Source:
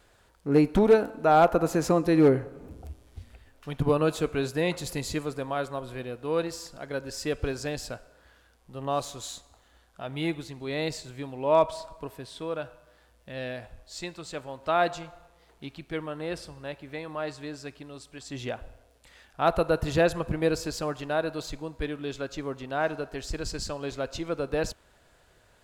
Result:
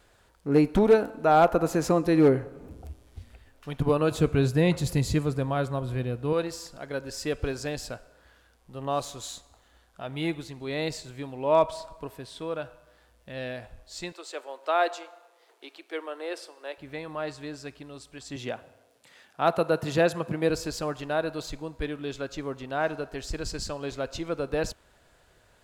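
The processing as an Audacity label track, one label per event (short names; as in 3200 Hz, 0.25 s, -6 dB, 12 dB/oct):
4.110000	6.330000	bell 100 Hz +13.5 dB 2.3 oct
14.120000	16.780000	steep high-pass 340 Hz
18.360000	20.500000	HPF 120 Hz 24 dB/oct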